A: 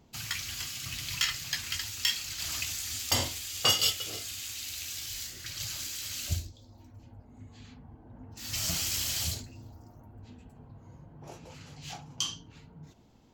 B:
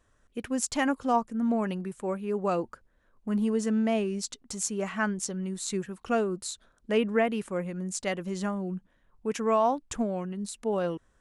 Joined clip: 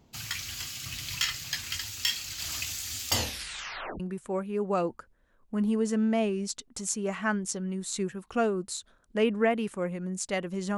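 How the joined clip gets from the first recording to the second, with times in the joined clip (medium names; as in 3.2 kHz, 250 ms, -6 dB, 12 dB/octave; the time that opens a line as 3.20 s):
A
3.14 s: tape stop 0.86 s
4.00 s: go over to B from 1.74 s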